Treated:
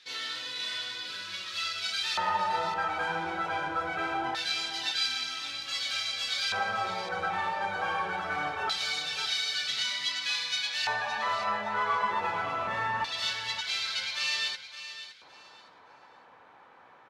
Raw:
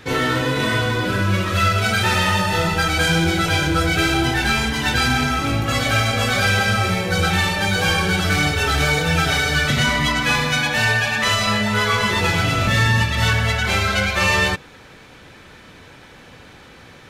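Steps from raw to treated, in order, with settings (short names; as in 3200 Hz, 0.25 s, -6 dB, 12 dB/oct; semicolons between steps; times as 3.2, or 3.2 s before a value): LFO band-pass square 0.23 Hz 940–4300 Hz; on a send: feedback echo 0.565 s, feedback 23%, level -12 dB; on the sum: gain -3 dB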